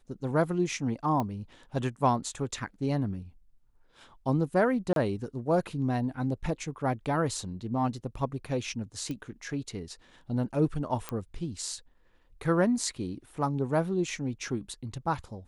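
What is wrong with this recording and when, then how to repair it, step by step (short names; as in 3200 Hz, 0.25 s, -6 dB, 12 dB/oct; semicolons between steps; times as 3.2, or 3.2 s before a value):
1.2 pop -18 dBFS
4.93–4.96 gap 32 ms
9.11 pop -24 dBFS
11.09 pop -17 dBFS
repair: de-click; interpolate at 4.93, 32 ms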